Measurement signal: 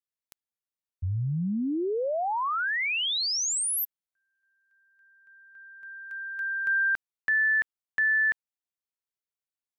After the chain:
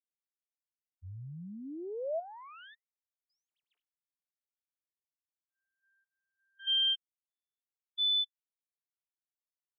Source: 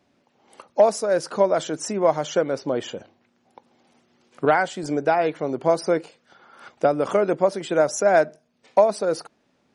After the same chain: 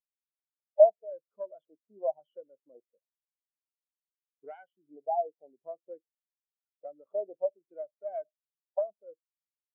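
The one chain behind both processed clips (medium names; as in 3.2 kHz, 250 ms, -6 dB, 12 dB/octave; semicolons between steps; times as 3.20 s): self-modulated delay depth 0.16 ms; LFO low-pass square 0.91 Hz 810–3100 Hz; spectral contrast expander 2.5:1; trim -8.5 dB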